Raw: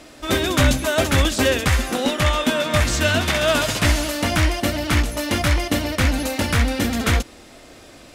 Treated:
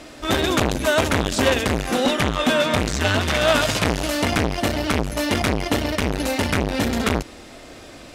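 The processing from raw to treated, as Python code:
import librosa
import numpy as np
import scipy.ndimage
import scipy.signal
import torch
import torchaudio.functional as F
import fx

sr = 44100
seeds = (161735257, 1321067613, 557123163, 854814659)

y = fx.high_shelf(x, sr, hz=8500.0, db=-5.5)
y = fx.transformer_sat(y, sr, knee_hz=980.0)
y = F.gain(torch.from_numpy(y), 3.5).numpy()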